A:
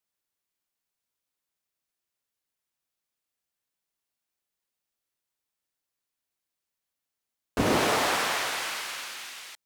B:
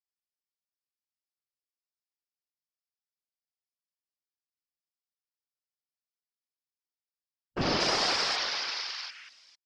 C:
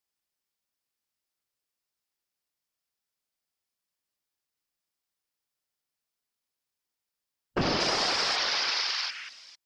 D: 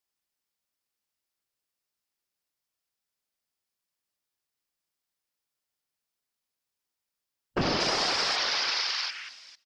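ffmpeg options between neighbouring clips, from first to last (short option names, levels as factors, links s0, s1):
-af "afwtdn=0.0112,lowpass=f=5100:t=q:w=6.1,afftfilt=real='hypot(re,im)*cos(2*PI*random(0))':imag='hypot(re,im)*sin(2*PI*random(1))':win_size=512:overlap=0.75,volume=1.12"
-af "acompressor=threshold=0.0251:ratio=6,volume=2.51"
-af "aecho=1:1:263:0.0841"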